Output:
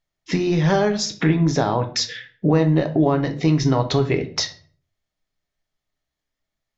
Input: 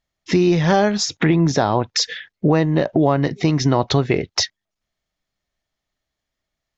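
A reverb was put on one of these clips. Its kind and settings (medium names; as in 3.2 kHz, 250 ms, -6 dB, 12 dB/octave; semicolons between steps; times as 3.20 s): simulated room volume 36 m³, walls mixed, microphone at 0.32 m; trim -4 dB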